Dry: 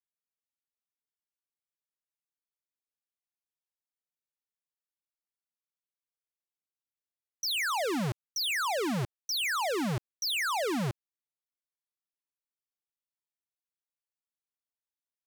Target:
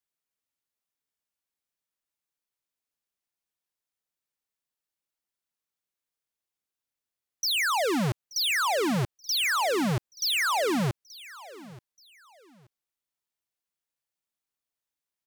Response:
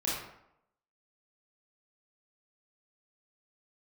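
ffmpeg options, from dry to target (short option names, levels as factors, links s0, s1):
-af "aecho=1:1:879|1758:0.106|0.0286,volume=1.68"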